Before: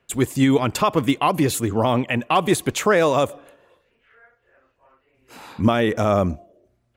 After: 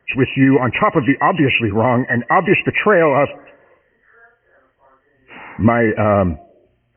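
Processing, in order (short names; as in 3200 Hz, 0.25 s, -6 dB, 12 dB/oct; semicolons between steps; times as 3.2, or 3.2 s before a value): nonlinear frequency compression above 1700 Hz 4:1; gain +4.5 dB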